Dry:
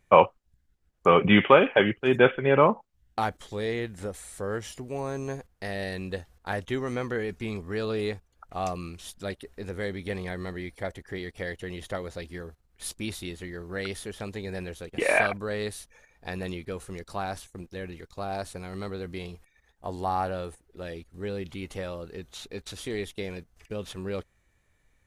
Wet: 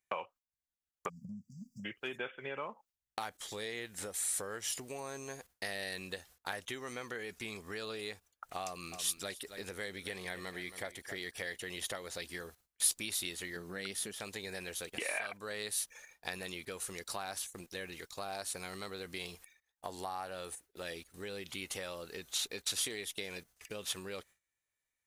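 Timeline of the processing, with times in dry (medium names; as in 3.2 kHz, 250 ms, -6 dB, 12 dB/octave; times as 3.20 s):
1.08–1.85 s: spectral selection erased 250–4600 Hz
8.65–11.58 s: delay 270 ms -15 dB
13.56–14.15 s: peaking EQ 200 Hz +9 dB 1.5 oct
whole clip: gate with hold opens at -46 dBFS; compression 8:1, threshold -36 dBFS; tilt EQ +3.5 dB/octave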